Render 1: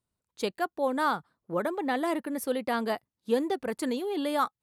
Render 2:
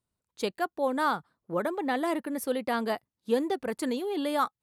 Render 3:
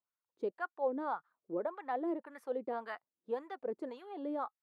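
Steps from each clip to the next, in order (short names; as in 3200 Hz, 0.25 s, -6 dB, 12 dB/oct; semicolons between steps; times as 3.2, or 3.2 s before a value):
nothing audible
LFO band-pass sine 1.8 Hz 350–1500 Hz; gain -2.5 dB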